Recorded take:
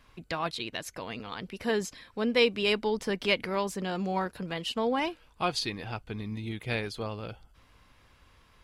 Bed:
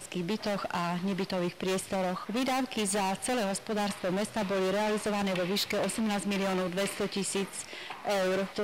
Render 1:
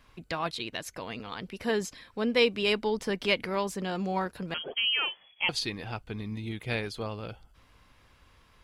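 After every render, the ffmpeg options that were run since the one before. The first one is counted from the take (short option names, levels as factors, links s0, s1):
-filter_complex "[0:a]asettb=1/sr,asplit=3[s0][s1][s2];[s0]atrim=end=4.544[s3];[s1]atrim=start=4.54:end=5.49,asetpts=PTS-STARTPTS,afade=t=in:d=0.004:c=qsin,afade=t=out:st=0.946:d=0.004:c=qsin,lowpass=f=2900:t=q:w=0.5098,lowpass=f=2900:t=q:w=0.6013,lowpass=f=2900:t=q:w=0.9,lowpass=f=2900:t=q:w=2.563,afreqshift=-3400[s4];[s2]atrim=start=5.486[s5];[s3][s4]acrossfade=d=0.004:c1=hsin:c2=qsin[s6];[s6][s5]acrossfade=d=0.004:c1=qsin:c2=hsin"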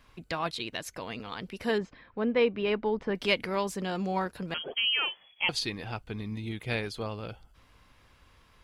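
-filter_complex "[0:a]asettb=1/sr,asplit=3[s0][s1][s2];[s0]atrim=end=1.784[s3];[s1]atrim=start=1.78:end=3.15,asetpts=PTS-STARTPTS,afade=t=in:d=0.004:c=qsin,afade=t=out:st=1.366:d=0.004:c=qsin,lowpass=1900[s4];[s2]atrim=start=3.146[s5];[s3][s4]acrossfade=d=0.004:c1=hsin:c2=qsin[s6];[s6][s5]acrossfade=d=0.004:c1=qsin:c2=hsin"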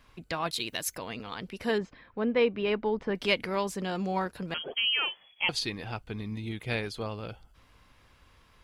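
-filter_complex "[0:a]asettb=1/sr,asplit=3[s0][s1][s2];[s0]atrim=end=0.514[s3];[s1]atrim=start=0.51:end=0.98,asetpts=PTS-STARTPTS,afade=t=in:d=0.004:c=qsin,afade=t=out:st=0.466:d=0.004:c=qsin,aemphasis=mode=production:type=50fm[s4];[s2]atrim=start=0.976[s5];[s3][s4]acrossfade=d=0.004:c1=hsin:c2=qsin[s6];[s6][s5]acrossfade=d=0.004:c1=qsin:c2=hsin"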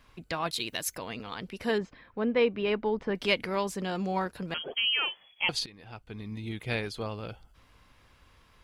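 -filter_complex "[0:a]asplit=2[s0][s1];[s0]atrim=end=5.66,asetpts=PTS-STARTPTS,afade=t=out:st=5.656:d=0.004:c=hsin:silence=0.112202[s2];[s1]atrim=start=5.66,asetpts=PTS-STARTPTS,afade=t=in:d=0.9:silence=0.112202[s3];[s2][s3]concat=n=2:v=0:a=1"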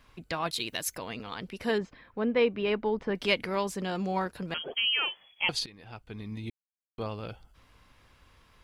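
-filter_complex "[0:a]asplit=3[s0][s1][s2];[s0]atrim=end=6.5,asetpts=PTS-STARTPTS,afade=t=out:st=6.496:d=0.004:c=hsin[s3];[s1]atrim=start=6.5:end=6.98,asetpts=PTS-STARTPTS,volume=0[s4];[s2]atrim=start=6.98,asetpts=PTS-STARTPTS,afade=t=in:d=0.004:c=hsin[s5];[s3][s4][s5]concat=n=3:v=0:a=1"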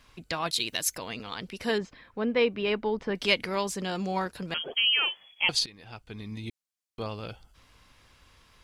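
-af "equalizer=f=6300:t=o:w=2.2:g=6.5"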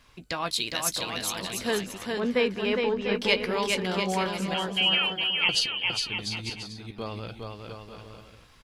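-filter_complex "[0:a]asplit=2[s0][s1];[s1]adelay=16,volume=0.237[s2];[s0][s2]amix=inputs=2:normalize=0,aecho=1:1:410|697|897.9|1039|1137:0.631|0.398|0.251|0.158|0.1"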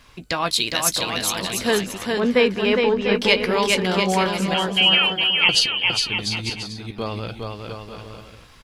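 -af "volume=2.37,alimiter=limit=0.708:level=0:latency=1"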